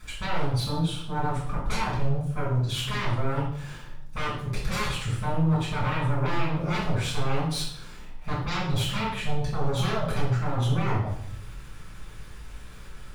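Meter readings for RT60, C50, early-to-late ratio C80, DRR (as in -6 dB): 0.65 s, 2.5 dB, 7.0 dB, -7.0 dB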